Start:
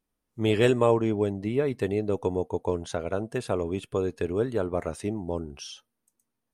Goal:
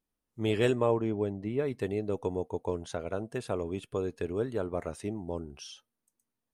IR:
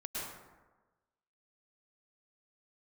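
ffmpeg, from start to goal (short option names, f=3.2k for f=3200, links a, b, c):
-filter_complex "[0:a]asettb=1/sr,asplit=3[a][b][c];[a]atrim=end=0.754[d];[b]atrim=start=0.75:end=1.59,asetpts=PTS-STARTPTS,afade=t=in:d=0.004:c=qsin,afade=t=out:st=0.836:d=0.004:c=qsin,highshelf=f=3.5k:g=-9[e];[c]atrim=start=1.586[f];[d][e]acrossfade=d=0.004:c1=hsin:c2=qsin[g];[g][f]acrossfade=d=0.004:c1=qsin:c2=hsin,volume=-5dB"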